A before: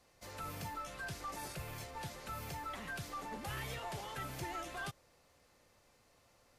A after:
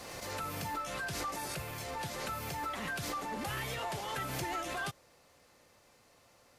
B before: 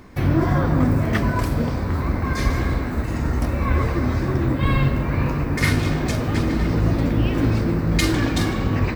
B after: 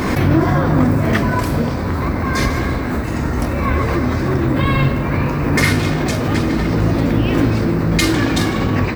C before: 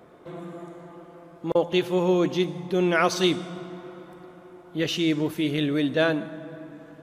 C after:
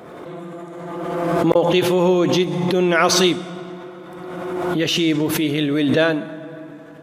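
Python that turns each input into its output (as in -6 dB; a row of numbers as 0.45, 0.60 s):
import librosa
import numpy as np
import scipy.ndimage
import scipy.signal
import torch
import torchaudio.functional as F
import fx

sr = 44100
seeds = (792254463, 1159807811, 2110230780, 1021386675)

y = fx.low_shelf(x, sr, hz=64.0, db=-11.0)
y = fx.pre_swell(y, sr, db_per_s=26.0)
y = y * 10.0 ** (5.0 / 20.0)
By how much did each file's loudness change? +6.0, +4.5, +6.0 LU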